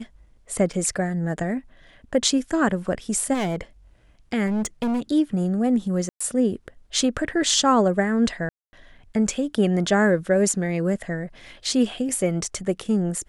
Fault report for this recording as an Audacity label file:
0.730000	0.730000	dropout 4.7 ms
3.330000	3.610000	clipped -21.5 dBFS
4.460000	5.000000	clipped -21 dBFS
6.090000	6.210000	dropout 115 ms
8.490000	8.730000	dropout 240 ms

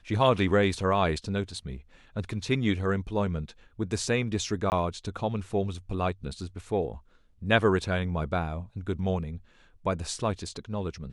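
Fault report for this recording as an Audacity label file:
4.700000	4.720000	dropout 19 ms

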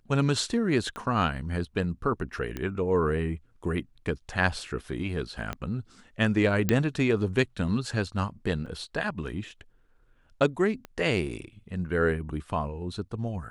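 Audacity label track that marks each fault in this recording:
0.960000	0.960000	pop -23 dBFS
2.570000	2.570000	pop -19 dBFS
5.530000	5.530000	pop -18 dBFS
6.690000	6.690000	pop -9 dBFS
8.660000	8.660000	dropout 5 ms
10.850000	10.850000	pop -25 dBFS

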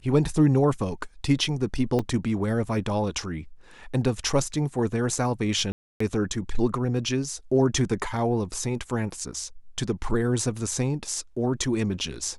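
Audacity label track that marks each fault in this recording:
1.990000	1.990000	dropout 4 ms
5.720000	6.000000	dropout 284 ms

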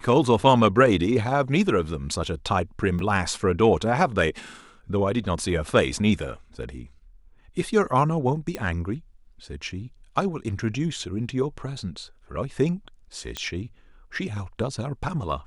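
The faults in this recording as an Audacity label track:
2.990000	2.990000	dropout 2.4 ms
8.550000	8.550000	pop -15 dBFS
13.370000	13.370000	pop -14 dBFS

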